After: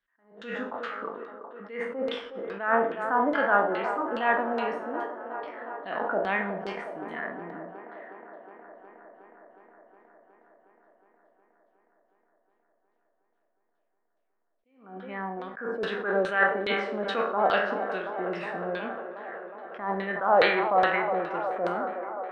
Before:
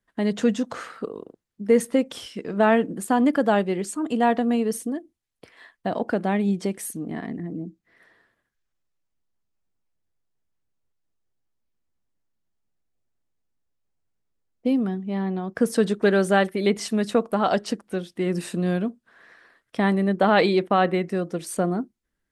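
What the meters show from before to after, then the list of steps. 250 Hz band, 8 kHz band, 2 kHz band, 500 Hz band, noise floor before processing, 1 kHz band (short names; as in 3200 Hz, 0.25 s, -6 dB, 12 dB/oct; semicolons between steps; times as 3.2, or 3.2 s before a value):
-13.0 dB, under -25 dB, +2.0 dB, -4.5 dB, -80 dBFS, 0.0 dB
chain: spectral trails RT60 0.58 s; bell 110 Hz -12.5 dB 2 oct; LFO low-pass saw down 2.4 Hz 510–4000 Hz; bell 1400 Hz +9 dB 1.5 oct; on a send: band-limited delay 0.364 s, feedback 77%, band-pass 650 Hz, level -10 dB; on the sum: Schroeder reverb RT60 0.6 s, combs from 31 ms, DRR 13 dB; attack slew limiter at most 110 dB/s; gain -8.5 dB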